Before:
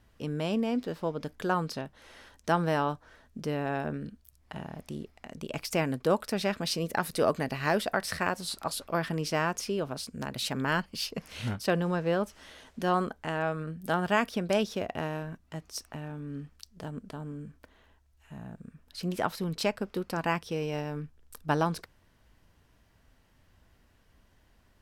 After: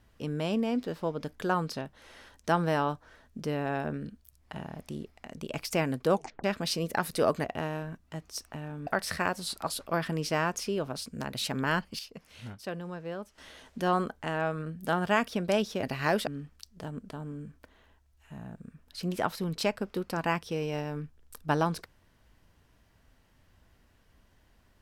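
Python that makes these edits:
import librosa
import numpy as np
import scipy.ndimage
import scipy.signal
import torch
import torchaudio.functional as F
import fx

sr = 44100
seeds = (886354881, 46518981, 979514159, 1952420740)

y = fx.edit(x, sr, fx.tape_stop(start_s=6.13, length_s=0.31),
    fx.swap(start_s=7.44, length_s=0.44, other_s=14.84, other_length_s=1.43),
    fx.clip_gain(start_s=11.0, length_s=1.39, db=-10.0), tone=tone)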